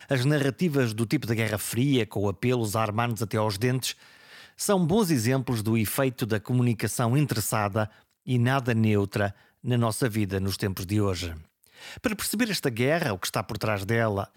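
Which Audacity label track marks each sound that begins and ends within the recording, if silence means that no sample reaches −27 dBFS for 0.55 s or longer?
4.610000	11.290000	sound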